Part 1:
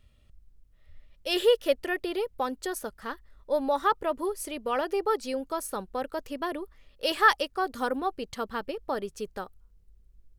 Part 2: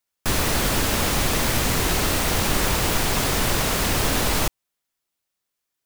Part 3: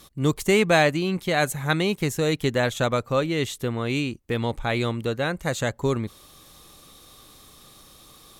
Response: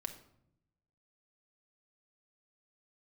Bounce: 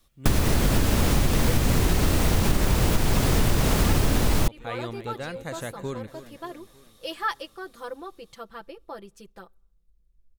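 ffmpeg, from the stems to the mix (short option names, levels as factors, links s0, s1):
-filter_complex "[0:a]aecho=1:1:5.9:0.89,volume=0.299,asplit=2[s0][s1];[s1]volume=0.0944[s2];[1:a]lowshelf=f=400:g=11.5,volume=1.26[s3];[2:a]dynaudnorm=f=460:g=7:m=3.76,volume=0.126,asplit=2[s4][s5];[s5]volume=0.211[s6];[3:a]atrim=start_sample=2205[s7];[s2][s7]afir=irnorm=-1:irlink=0[s8];[s6]aecho=0:1:301|602|903|1204|1505|1806|2107|2408:1|0.53|0.281|0.149|0.0789|0.0418|0.0222|0.0117[s9];[s0][s3][s4][s8][s9]amix=inputs=5:normalize=0,acompressor=threshold=0.141:ratio=6"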